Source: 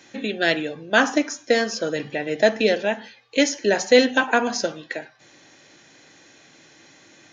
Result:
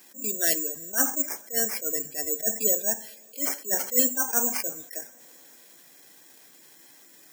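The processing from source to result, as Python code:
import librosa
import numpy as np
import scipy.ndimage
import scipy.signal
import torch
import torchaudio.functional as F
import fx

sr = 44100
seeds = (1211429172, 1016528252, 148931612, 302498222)

p1 = scipy.signal.sosfilt(scipy.signal.butter(4, 150.0, 'highpass', fs=sr, output='sos'), x)
p2 = (np.kron(p1[::6], np.eye(6)[0]) * 6)[:len(p1)]
p3 = np.clip(10.0 ** (3.0 / 20.0) * p2, -1.0, 1.0) / 10.0 ** (3.0 / 20.0)
p4 = p2 + (p3 * librosa.db_to_amplitude(-7.5))
p5 = fx.spec_gate(p4, sr, threshold_db=-15, keep='strong')
p6 = fx.rev_double_slope(p5, sr, seeds[0], early_s=0.24, late_s=4.4, knee_db=-21, drr_db=14.5)
p7 = fx.attack_slew(p6, sr, db_per_s=230.0)
y = p7 * librosa.db_to_amplitude(-12.0)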